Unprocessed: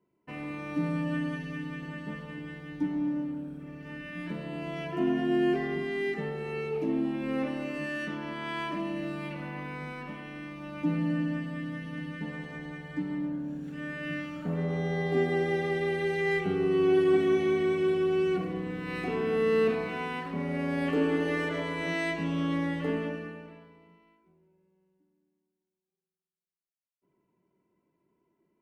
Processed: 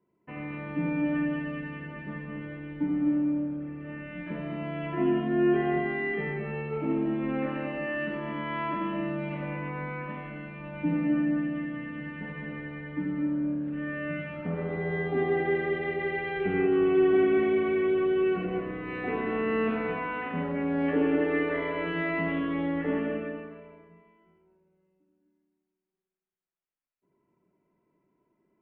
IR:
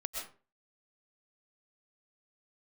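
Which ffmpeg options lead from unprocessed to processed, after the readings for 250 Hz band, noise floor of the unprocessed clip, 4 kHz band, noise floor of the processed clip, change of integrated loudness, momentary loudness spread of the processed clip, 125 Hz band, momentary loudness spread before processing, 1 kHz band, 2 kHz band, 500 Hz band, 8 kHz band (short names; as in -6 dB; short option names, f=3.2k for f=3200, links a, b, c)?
+2.0 dB, -85 dBFS, -4.5 dB, -80 dBFS, +1.5 dB, 13 LU, -0.5 dB, 13 LU, +2.5 dB, +1.5 dB, +1.0 dB, n/a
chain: -filter_complex "[0:a]lowpass=f=2.6k:w=0.5412,lowpass=f=2.6k:w=1.3066,asplit=2[a][b];[1:a]atrim=start_sample=2205,adelay=82[c];[b][c]afir=irnorm=-1:irlink=0,volume=-2dB[d];[a][d]amix=inputs=2:normalize=0"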